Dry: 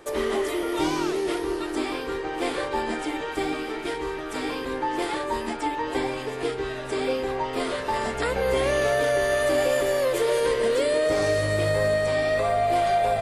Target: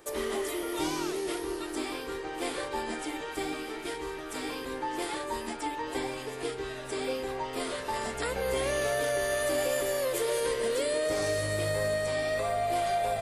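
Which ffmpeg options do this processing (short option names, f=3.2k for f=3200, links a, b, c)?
-af "crystalizer=i=1.5:c=0,volume=-7dB"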